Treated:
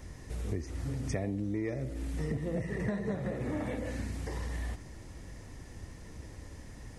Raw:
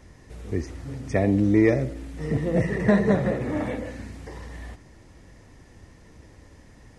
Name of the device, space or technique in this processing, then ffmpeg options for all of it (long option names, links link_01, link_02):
ASMR close-microphone chain: -af "lowshelf=frequency=130:gain=5,acompressor=threshold=-31dB:ratio=8,highshelf=frequency=6800:gain=8"